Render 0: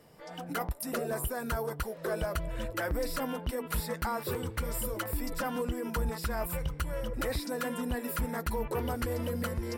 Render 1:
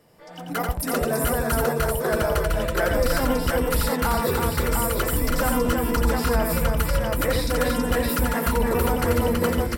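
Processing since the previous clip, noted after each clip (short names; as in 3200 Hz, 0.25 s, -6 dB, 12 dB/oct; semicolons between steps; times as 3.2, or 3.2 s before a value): AGC gain up to 8 dB; on a send: tapped delay 87/326/704 ms -4/-4/-3.5 dB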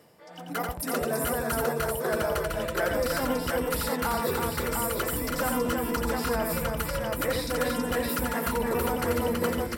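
HPF 140 Hz 6 dB/oct; reverse; upward compressor, threshold -41 dBFS; reverse; gain -4 dB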